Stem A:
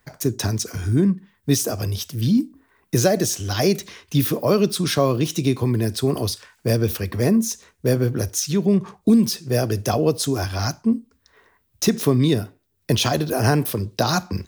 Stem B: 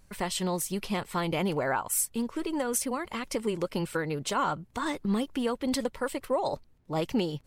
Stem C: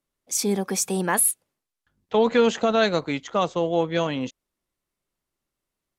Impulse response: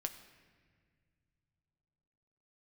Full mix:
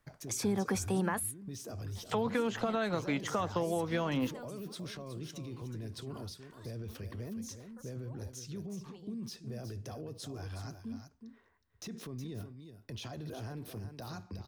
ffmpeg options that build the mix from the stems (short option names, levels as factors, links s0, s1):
-filter_complex "[0:a]lowshelf=f=230:g=5,alimiter=limit=0.168:level=0:latency=1:release=195,volume=0.211,asplit=2[s0][s1];[s1]volume=0.188[s2];[1:a]highshelf=f=3700:g=9.5,adelay=1750,volume=0.15[s3];[2:a]alimiter=limit=0.119:level=0:latency=1:release=356,acrossover=split=310[s4][s5];[s5]acompressor=threshold=0.00708:ratio=2[s6];[s4][s6]amix=inputs=2:normalize=0,equalizer=f=1200:t=o:w=2:g=8.5,volume=1.12,asplit=2[s7][s8];[s8]apad=whole_len=406289[s9];[s3][s9]sidechaingate=range=0.251:threshold=0.001:ratio=16:detection=peak[s10];[s0][s10]amix=inputs=2:normalize=0,highshelf=f=8200:g=-11.5,alimiter=level_in=3.76:limit=0.0631:level=0:latency=1:release=11,volume=0.266,volume=1[s11];[s2]aecho=0:1:366:1[s12];[s7][s11][s12]amix=inputs=3:normalize=0,acompressor=threshold=0.0398:ratio=3"